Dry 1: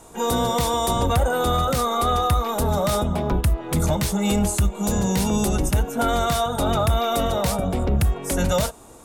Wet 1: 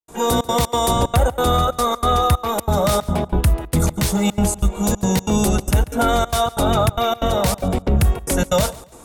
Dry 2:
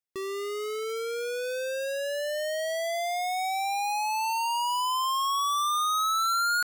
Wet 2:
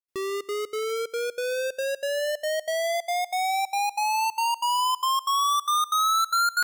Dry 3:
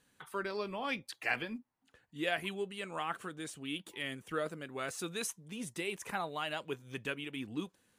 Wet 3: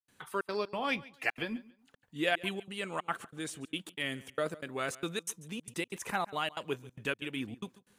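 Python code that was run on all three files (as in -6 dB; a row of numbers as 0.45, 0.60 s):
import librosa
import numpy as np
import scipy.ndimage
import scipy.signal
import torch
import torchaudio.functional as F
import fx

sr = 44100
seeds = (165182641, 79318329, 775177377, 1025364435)

p1 = fx.step_gate(x, sr, bpm=185, pattern='.xxxx.xx', floor_db=-60.0, edge_ms=4.5)
p2 = p1 + fx.echo_feedback(p1, sr, ms=140, feedback_pct=25, wet_db=-20, dry=0)
y = p2 * 10.0 ** (4.0 / 20.0)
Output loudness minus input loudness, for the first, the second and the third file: +3.0, +2.5, +2.5 LU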